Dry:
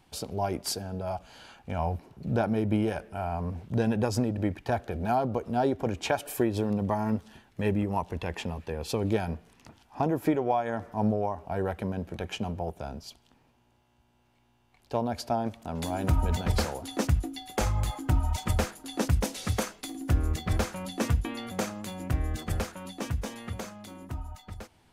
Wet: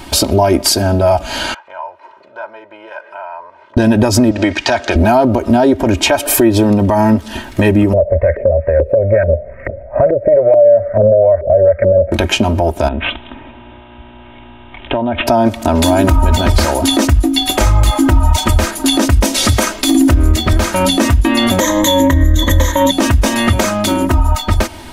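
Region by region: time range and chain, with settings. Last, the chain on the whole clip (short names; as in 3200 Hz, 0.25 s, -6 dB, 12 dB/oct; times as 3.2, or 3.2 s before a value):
1.54–3.77 comb 2 ms, depth 61% + compressor 3:1, threshold -42 dBFS + ladder band-pass 1300 Hz, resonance 25%
4.31–4.96 LPF 6400 Hz 24 dB/oct + tilt +3.5 dB/oct
7.93–12.12 EQ curve 150 Hz 0 dB, 310 Hz -24 dB, 560 Hz +13 dB, 890 Hz -27 dB, 2100 Hz +6 dB, 3200 Hz -29 dB, 5700 Hz -28 dB, 12000 Hz +5 dB + LFO low-pass saw up 2.3 Hz 390–1600 Hz
12.88–15.27 compressor 10:1, threshold -42 dBFS + careless resampling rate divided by 6×, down none, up filtered
21.6–22.91 ripple EQ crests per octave 1.1, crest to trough 18 dB + compressor 2:1, threshold -29 dBFS
whole clip: compressor 4:1, threshold -38 dBFS; comb 3.2 ms, depth 73%; maximiser +30 dB; gain -1 dB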